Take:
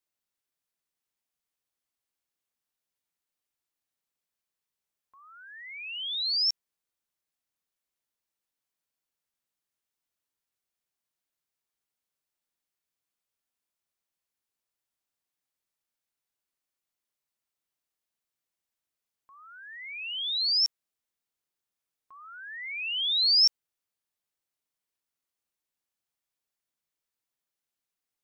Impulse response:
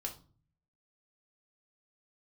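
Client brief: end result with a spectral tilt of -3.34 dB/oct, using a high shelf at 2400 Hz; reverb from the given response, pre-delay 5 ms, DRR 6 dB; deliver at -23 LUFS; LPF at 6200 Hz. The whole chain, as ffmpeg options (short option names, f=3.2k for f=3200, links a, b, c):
-filter_complex "[0:a]lowpass=6.2k,highshelf=f=2.4k:g=-7,asplit=2[a][b];[1:a]atrim=start_sample=2205,adelay=5[c];[b][c]afir=irnorm=-1:irlink=0,volume=-5.5dB[d];[a][d]amix=inputs=2:normalize=0,volume=8dB"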